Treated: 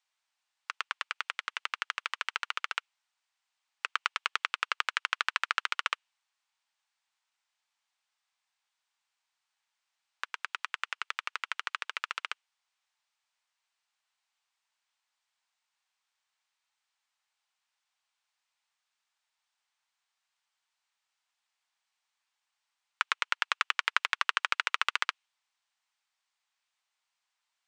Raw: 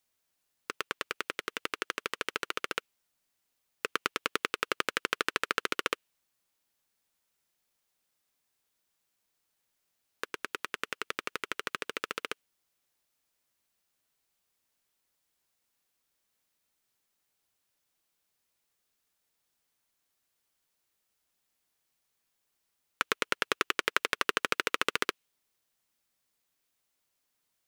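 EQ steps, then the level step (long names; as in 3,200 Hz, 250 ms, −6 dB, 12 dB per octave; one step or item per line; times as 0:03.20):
Chebyshev band-pass filter 830–8,800 Hz, order 3
high-frequency loss of the air 73 metres
+2.5 dB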